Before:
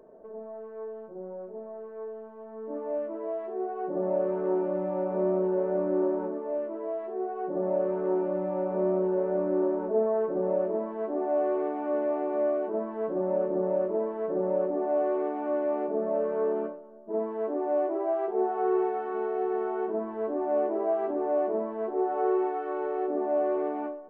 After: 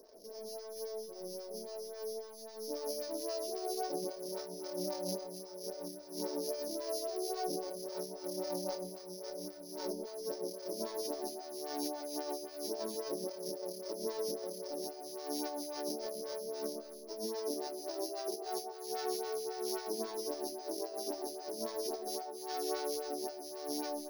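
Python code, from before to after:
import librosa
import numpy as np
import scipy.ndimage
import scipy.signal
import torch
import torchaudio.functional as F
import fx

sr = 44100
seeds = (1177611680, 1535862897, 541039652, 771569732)

y = np.r_[np.sort(x[:len(x) // 8 * 8].reshape(-1, 8), axis=1).ravel(), x[len(x) // 8 * 8:]]
y = fx.over_compress(y, sr, threshold_db=-31.0, ratio=-0.5)
y = fx.high_shelf_res(y, sr, hz=1600.0, db=7.0, q=1.5)
y = fx.echo_alternate(y, sr, ms=138, hz=960.0, feedback_pct=52, wet_db=-4.5)
y = fx.stagger_phaser(y, sr, hz=3.7)
y = y * 10.0 ** (-7.0 / 20.0)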